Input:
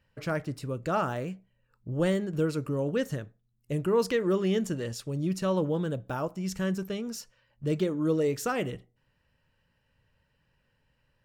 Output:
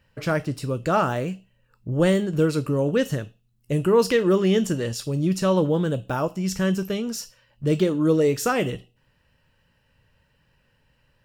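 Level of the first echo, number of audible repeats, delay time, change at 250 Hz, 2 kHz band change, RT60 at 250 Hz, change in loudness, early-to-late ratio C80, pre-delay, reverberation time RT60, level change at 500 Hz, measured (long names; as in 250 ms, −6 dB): no echo audible, no echo audible, no echo audible, +7.0 dB, +7.0 dB, 0.55 s, +7.0 dB, 20.0 dB, 13 ms, 0.50 s, +7.0 dB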